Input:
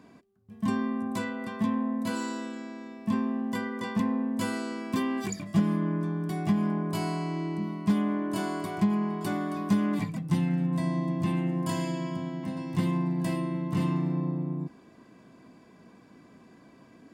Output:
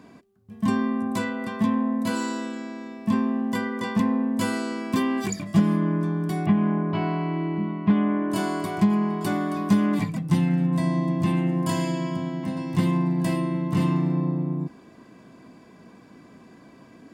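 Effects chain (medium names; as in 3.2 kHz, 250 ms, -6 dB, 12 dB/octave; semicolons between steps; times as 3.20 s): 6.46–8.30 s: low-pass 3 kHz 24 dB/octave; trim +5 dB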